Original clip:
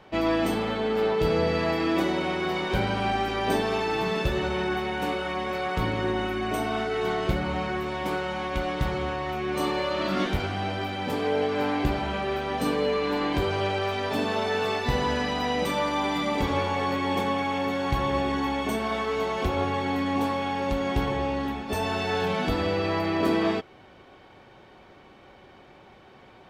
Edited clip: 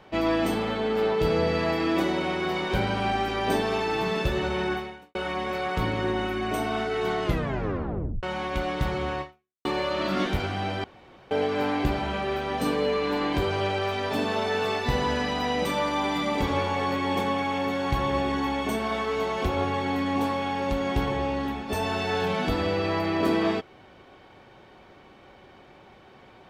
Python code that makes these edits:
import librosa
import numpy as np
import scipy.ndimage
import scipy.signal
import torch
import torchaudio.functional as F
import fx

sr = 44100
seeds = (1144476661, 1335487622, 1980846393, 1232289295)

y = fx.edit(x, sr, fx.fade_out_span(start_s=4.72, length_s=0.43, curve='qua'),
    fx.tape_stop(start_s=7.24, length_s=0.99),
    fx.fade_out_span(start_s=9.21, length_s=0.44, curve='exp'),
    fx.room_tone_fill(start_s=10.84, length_s=0.47), tone=tone)